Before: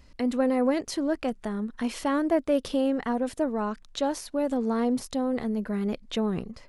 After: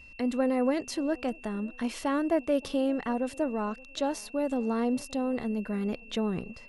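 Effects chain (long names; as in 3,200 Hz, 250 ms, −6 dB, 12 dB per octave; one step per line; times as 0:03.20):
steady tone 2,700 Hz −47 dBFS
delay with a band-pass on its return 573 ms, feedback 33%, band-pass 470 Hz, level −23 dB
level −2.5 dB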